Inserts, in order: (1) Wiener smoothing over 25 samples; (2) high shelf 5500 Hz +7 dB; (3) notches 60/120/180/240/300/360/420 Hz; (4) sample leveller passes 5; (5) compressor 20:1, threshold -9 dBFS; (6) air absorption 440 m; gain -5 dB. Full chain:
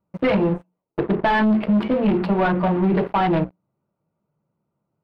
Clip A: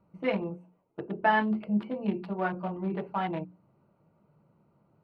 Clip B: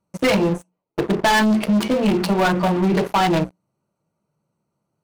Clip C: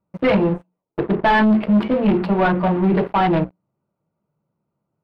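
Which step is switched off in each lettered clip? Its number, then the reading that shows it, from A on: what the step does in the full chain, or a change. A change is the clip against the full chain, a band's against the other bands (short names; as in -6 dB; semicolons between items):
4, crest factor change +10.5 dB; 6, 4 kHz band +8.5 dB; 5, mean gain reduction 1.5 dB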